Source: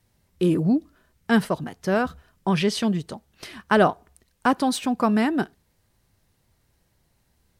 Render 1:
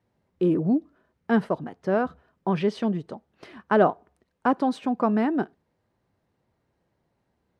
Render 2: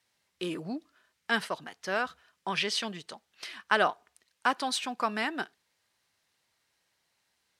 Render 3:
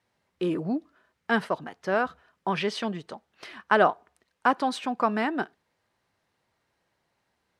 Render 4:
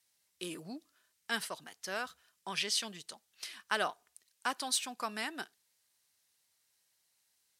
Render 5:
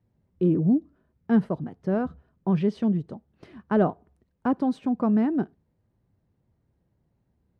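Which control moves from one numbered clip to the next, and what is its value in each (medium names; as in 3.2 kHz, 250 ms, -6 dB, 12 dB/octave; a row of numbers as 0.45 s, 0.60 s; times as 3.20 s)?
band-pass filter, frequency: 470 Hz, 3.1 kHz, 1.2 kHz, 7.9 kHz, 180 Hz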